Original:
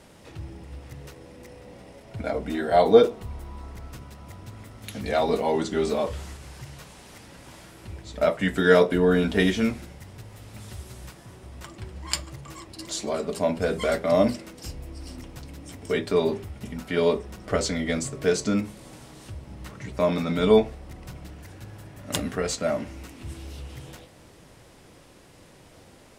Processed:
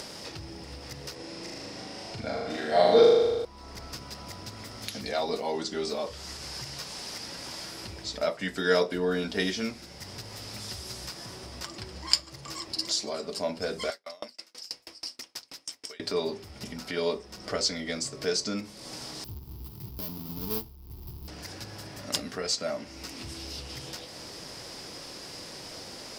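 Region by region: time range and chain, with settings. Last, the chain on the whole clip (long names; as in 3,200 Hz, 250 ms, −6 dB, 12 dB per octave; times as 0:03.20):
0:01.15–0:03.45: low-pass filter 9,400 Hz + flutter between parallel walls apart 6.7 metres, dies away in 1.4 s
0:13.90–0:16.00: high-pass filter 1,400 Hz 6 dB per octave + tremolo with a ramp in dB decaying 6.2 Hz, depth 38 dB
0:19.24–0:21.28: each half-wave held at its own peak + drawn EQ curve 100 Hz 0 dB, 230 Hz −12 dB, 390 Hz −11 dB, 550 Hz −28 dB, 920 Hz −15 dB, 1,700 Hz −30 dB, 3,000 Hz −20 dB, 5,100 Hz −22 dB, 7,300 Hz −25 dB, 14,000 Hz +4 dB
whole clip: low-shelf EQ 150 Hz −11 dB; upward compression, threshold −26 dBFS; parametric band 5,000 Hz +15 dB 0.54 octaves; level −6 dB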